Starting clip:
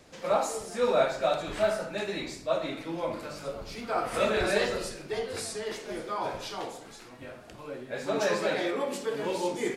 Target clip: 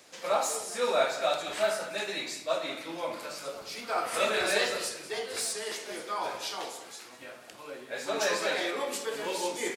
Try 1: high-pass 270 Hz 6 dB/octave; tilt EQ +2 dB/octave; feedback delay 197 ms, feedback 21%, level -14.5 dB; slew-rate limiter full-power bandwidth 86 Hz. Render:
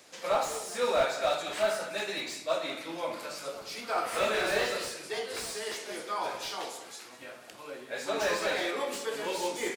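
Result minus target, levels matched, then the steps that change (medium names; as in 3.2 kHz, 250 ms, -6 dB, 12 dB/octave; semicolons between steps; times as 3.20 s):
slew-rate limiter: distortion +17 dB
change: slew-rate limiter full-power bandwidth 298.5 Hz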